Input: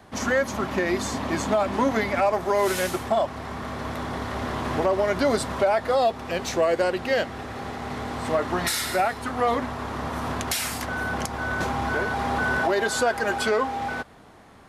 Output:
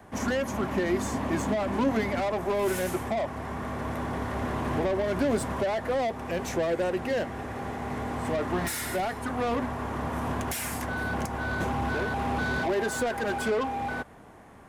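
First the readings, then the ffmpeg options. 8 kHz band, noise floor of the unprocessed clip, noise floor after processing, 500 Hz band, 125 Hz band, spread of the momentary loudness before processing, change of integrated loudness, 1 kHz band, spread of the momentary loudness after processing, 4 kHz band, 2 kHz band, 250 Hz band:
−5.5 dB, −49 dBFS, −49 dBFS, −4.5 dB, 0.0 dB, 9 LU, −4.0 dB, −5.5 dB, 6 LU, −8.0 dB, −5.5 dB, −0.5 dB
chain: -filter_complex "[0:a]equalizer=frequency=4200:width_type=o:width=1:gain=-10,bandreject=frequency=1300:width=15,acrossover=split=380[link_01][link_02];[link_02]asoftclip=type=tanh:threshold=-28dB[link_03];[link_01][link_03]amix=inputs=2:normalize=0"

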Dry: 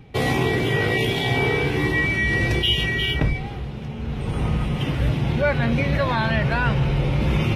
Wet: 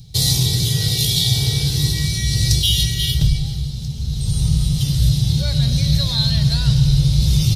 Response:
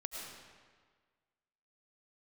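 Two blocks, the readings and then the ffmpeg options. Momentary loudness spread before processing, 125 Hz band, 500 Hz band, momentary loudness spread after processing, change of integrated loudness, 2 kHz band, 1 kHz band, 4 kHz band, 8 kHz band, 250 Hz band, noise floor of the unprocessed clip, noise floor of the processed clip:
8 LU, +6.5 dB, −13.0 dB, 7 LU, +4.0 dB, −12.5 dB, below −10 dB, +8.0 dB, +20.0 dB, +0.5 dB, −31 dBFS, −25 dBFS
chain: -filter_complex "[0:a]firequalizer=gain_entry='entry(150,0);entry(240,-19);entry(1100,-23);entry(2500,-18);entry(4000,13)':delay=0.05:min_phase=1,asplit=2[link_01][link_02];[1:a]atrim=start_sample=2205[link_03];[link_02][link_03]afir=irnorm=-1:irlink=0,volume=-3.5dB[link_04];[link_01][link_04]amix=inputs=2:normalize=0,volume=3.5dB"

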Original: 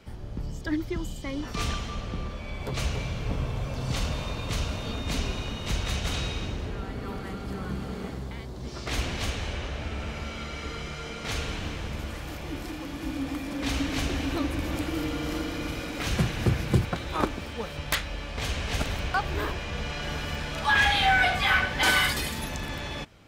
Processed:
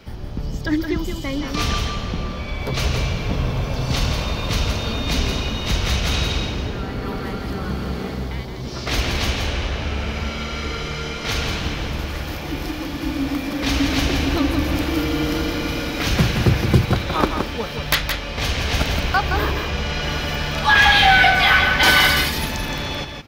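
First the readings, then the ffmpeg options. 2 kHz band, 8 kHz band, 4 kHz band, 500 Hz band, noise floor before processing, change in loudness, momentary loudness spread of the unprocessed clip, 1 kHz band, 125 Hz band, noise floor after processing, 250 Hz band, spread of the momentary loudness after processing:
+9.0 dB, +7.0 dB, +10.0 dB, +8.5 dB, −38 dBFS, +9.0 dB, 14 LU, +8.5 dB, +8.5 dB, −30 dBFS, +8.5 dB, 14 LU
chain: -af "highshelf=frequency=7800:width_type=q:width=1.5:gain=-12,aexciter=amount=8.8:drive=1.5:freq=10000,aecho=1:1:169:0.501,volume=7.5dB"

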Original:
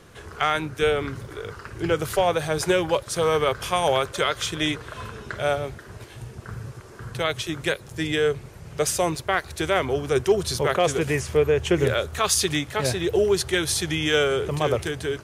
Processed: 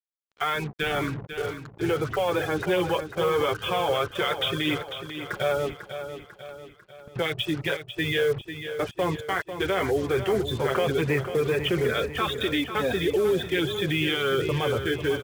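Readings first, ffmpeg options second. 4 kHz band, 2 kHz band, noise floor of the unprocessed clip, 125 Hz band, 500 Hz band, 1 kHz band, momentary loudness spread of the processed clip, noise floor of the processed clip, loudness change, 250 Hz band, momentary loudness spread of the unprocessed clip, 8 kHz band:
−2.0 dB, −1.5 dB, −44 dBFS, −2.0 dB, −2.5 dB, −3.0 dB, 9 LU, −53 dBFS, −3.0 dB, −0.5 dB, 16 LU, −15.0 dB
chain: -filter_complex "[0:a]aresample=8000,aresample=44100,adynamicequalizer=threshold=0.0224:dfrequency=690:dqfactor=1.2:tfrequency=690:tqfactor=1.2:attack=5:release=100:ratio=0.375:range=1.5:mode=cutabove:tftype=bell,asplit=2[link_01][link_02];[link_02]asoftclip=type=tanh:threshold=-17.5dB,volume=-4dB[link_03];[link_01][link_03]amix=inputs=2:normalize=0,afftfilt=real='re*gte(hypot(re,im),0.0501)':imag='im*gte(hypot(re,im),0.0501)':win_size=1024:overlap=0.75,flanger=delay=3.1:depth=8.4:regen=-16:speed=0.16:shape=triangular,alimiter=limit=-19.5dB:level=0:latency=1:release=22,acontrast=52,bandreject=frequency=630:width=12,agate=range=-12dB:threshold=-28dB:ratio=16:detection=peak,lowshelf=frequency=100:gain=-10,acrusher=bits=5:mix=0:aa=0.5,aecho=1:1:496|992|1488|1984|2480:0.316|0.158|0.0791|0.0395|0.0198,volume=-2.5dB"

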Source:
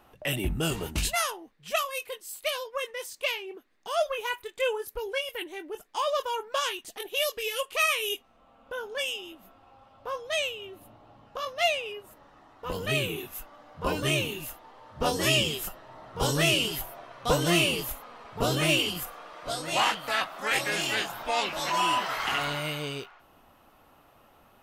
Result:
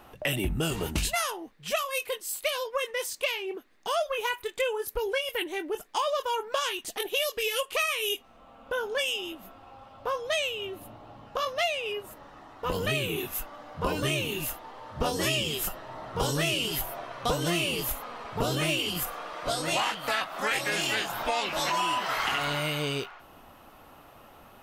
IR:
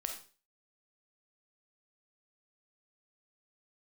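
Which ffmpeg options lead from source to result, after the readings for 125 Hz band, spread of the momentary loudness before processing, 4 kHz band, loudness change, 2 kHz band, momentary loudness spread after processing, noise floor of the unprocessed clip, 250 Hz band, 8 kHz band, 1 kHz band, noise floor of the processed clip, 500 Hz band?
−1.0 dB, 16 LU, −1.0 dB, −1.0 dB, −0.5 dB, 10 LU, −60 dBFS, −1.0 dB, 0.0 dB, 0.0 dB, −53 dBFS, +0.5 dB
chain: -af "acompressor=threshold=-32dB:ratio=5,volume=6.5dB"

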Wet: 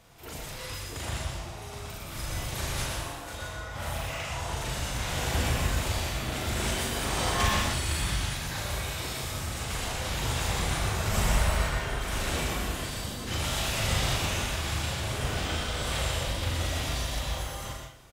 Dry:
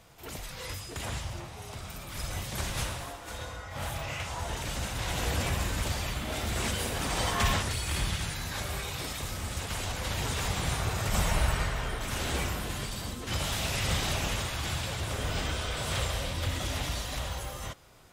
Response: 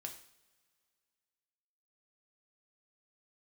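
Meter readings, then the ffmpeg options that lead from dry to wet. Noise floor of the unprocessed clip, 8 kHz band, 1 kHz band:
−43 dBFS, +2.0 dB, +2.0 dB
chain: -filter_complex "[0:a]asplit=2[link_01][link_02];[link_02]adelay=39,volume=-3.5dB[link_03];[link_01][link_03]amix=inputs=2:normalize=0,asplit=2[link_04][link_05];[1:a]atrim=start_sample=2205,adelay=120[link_06];[link_05][link_06]afir=irnorm=-1:irlink=0,volume=0.5dB[link_07];[link_04][link_07]amix=inputs=2:normalize=0,volume=-1.5dB"

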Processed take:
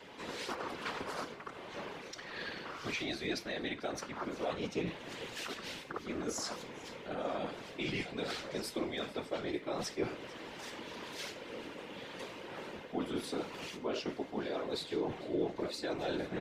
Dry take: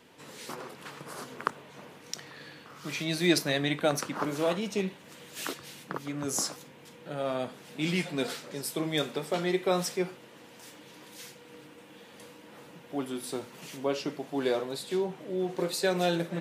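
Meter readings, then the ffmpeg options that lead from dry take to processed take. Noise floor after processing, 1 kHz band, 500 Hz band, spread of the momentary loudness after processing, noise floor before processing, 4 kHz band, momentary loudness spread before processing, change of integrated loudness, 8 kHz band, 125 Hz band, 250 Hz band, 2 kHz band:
−50 dBFS, −5.0 dB, −6.5 dB, 8 LU, −52 dBFS, −6.0 dB, 22 LU, −8.0 dB, −10.0 dB, −10.0 dB, −7.0 dB, −5.0 dB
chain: -filter_complex "[0:a]acrossover=split=190 5800:gain=0.178 1 0.178[link_01][link_02][link_03];[link_01][link_02][link_03]amix=inputs=3:normalize=0,areverse,acompressor=threshold=-39dB:ratio=4,areverse,alimiter=level_in=9dB:limit=-24dB:level=0:latency=1:release=266,volume=-9dB,afftfilt=real='hypot(re,im)*cos(2*PI*random(0))':imag='hypot(re,im)*sin(2*PI*random(1))':win_size=512:overlap=0.75,aeval=exprs='val(0)+0.000141*sin(2*PI*2100*n/s)':channel_layout=same,asplit=2[link_04][link_05];[link_05]asplit=3[link_06][link_07][link_08];[link_06]adelay=446,afreqshift=-58,volume=-20dB[link_09];[link_07]adelay=892,afreqshift=-116,volume=-28dB[link_10];[link_08]adelay=1338,afreqshift=-174,volume=-35.9dB[link_11];[link_09][link_10][link_11]amix=inputs=3:normalize=0[link_12];[link_04][link_12]amix=inputs=2:normalize=0,volume=12dB"

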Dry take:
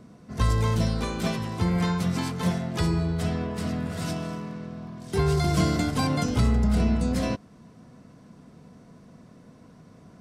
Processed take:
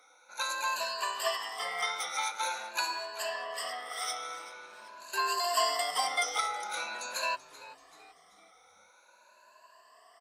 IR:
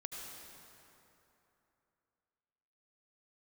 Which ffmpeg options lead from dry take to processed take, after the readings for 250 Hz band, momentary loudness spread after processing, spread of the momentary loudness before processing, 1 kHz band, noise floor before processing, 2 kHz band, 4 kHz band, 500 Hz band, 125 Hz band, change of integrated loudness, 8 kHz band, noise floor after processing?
−34.0 dB, 15 LU, 11 LU, +1.5 dB, −52 dBFS, +2.5 dB, +2.5 dB, −7.5 dB, below −40 dB, −6.5 dB, +2.5 dB, −62 dBFS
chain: -filter_complex "[0:a]afftfilt=real='re*pow(10,22/40*sin(2*PI*(1.4*log(max(b,1)*sr/1024/100)/log(2)-(0.46)*(pts-256)/sr)))':imag='im*pow(10,22/40*sin(2*PI*(1.4*log(max(b,1)*sr/1024/100)/log(2)-(0.46)*(pts-256)/sr)))':win_size=1024:overlap=0.75,highpass=frequency=750:width=0.5412,highpass=frequency=750:width=1.3066,asplit=5[link_01][link_02][link_03][link_04][link_05];[link_02]adelay=384,afreqshift=-110,volume=-17.5dB[link_06];[link_03]adelay=768,afreqshift=-220,volume=-24.6dB[link_07];[link_04]adelay=1152,afreqshift=-330,volume=-31.8dB[link_08];[link_05]adelay=1536,afreqshift=-440,volume=-38.9dB[link_09];[link_01][link_06][link_07][link_08][link_09]amix=inputs=5:normalize=0,volume=-2.5dB"

